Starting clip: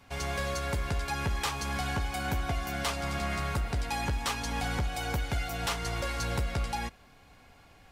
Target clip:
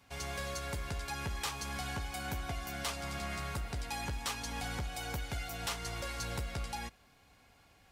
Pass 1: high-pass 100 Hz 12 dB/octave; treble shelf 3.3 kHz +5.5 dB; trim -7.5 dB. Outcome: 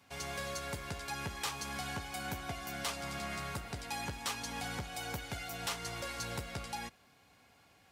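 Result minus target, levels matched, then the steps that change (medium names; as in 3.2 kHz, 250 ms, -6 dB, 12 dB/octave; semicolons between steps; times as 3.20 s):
125 Hz band -3.0 dB
change: high-pass 30 Hz 12 dB/octave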